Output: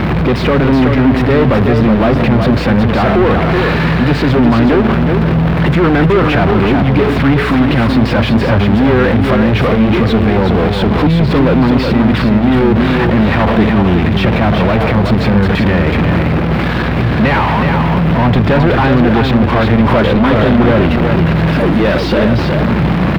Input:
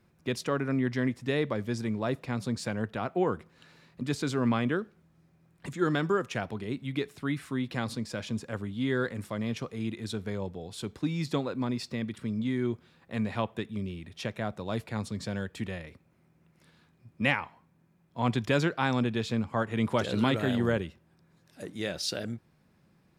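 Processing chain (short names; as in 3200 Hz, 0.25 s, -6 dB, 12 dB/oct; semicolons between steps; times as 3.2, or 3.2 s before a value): zero-crossing step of -28 dBFS; HPF 58 Hz 12 dB/oct; sample leveller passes 5; air absorption 410 m; on a send: echo 0.372 s -5 dB; on the sum: hum 60 Hz, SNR 10 dB; gain +4 dB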